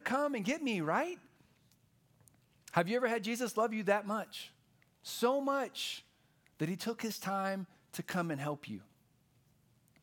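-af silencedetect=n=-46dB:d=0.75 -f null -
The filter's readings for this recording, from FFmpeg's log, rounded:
silence_start: 1.14
silence_end: 2.28 | silence_duration: 1.13
silence_start: 8.79
silence_end: 10.02 | silence_duration: 1.24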